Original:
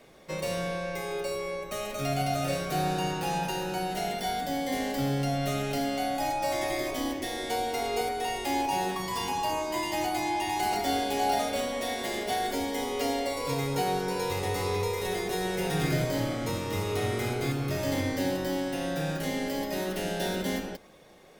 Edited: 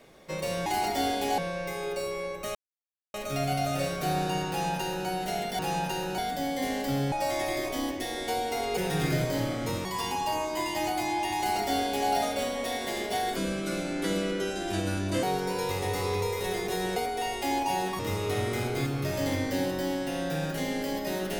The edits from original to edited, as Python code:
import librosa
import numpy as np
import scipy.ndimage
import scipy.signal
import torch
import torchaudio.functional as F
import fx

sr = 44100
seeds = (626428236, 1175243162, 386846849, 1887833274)

y = fx.edit(x, sr, fx.insert_silence(at_s=1.83, length_s=0.59),
    fx.duplicate(start_s=3.18, length_s=0.59, to_s=4.28),
    fx.cut(start_s=5.22, length_s=1.12),
    fx.swap(start_s=7.99, length_s=1.03, other_s=15.57, other_length_s=1.08),
    fx.duplicate(start_s=10.55, length_s=0.72, to_s=0.66),
    fx.speed_span(start_s=12.53, length_s=1.31, speed=0.7), tone=tone)